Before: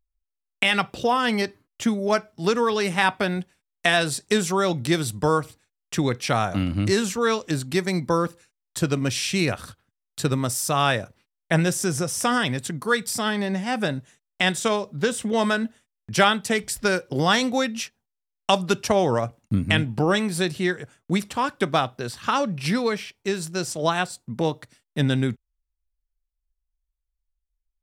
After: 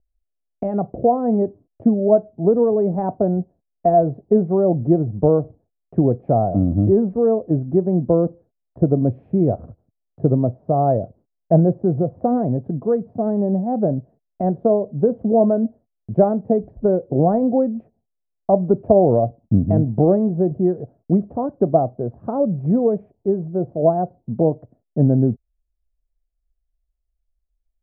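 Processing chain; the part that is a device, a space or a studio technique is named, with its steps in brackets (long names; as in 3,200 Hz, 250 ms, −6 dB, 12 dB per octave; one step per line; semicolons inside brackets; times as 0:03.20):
under water (low-pass filter 580 Hz 24 dB per octave; parametric band 680 Hz +11 dB 0.31 octaves)
level +6.5 dB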